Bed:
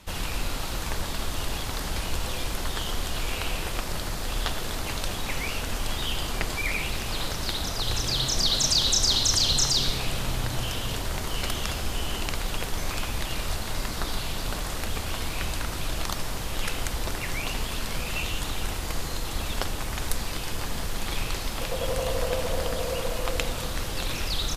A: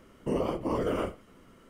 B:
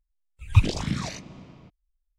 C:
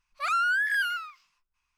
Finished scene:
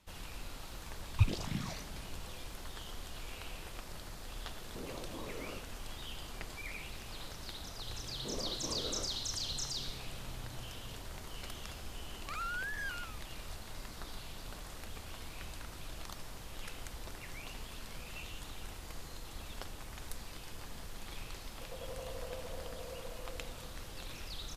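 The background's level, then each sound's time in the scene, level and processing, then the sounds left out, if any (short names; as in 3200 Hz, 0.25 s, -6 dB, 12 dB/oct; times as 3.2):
bed -16 dB
0.64 add B -10.5 dB + upward compressor 4:1, threshold -41 dBFS
4.49 add A -10.5 dB + compressor, threshold -31 dBFS
7.98 add A -14 dB
12.07 add C -14.5 dB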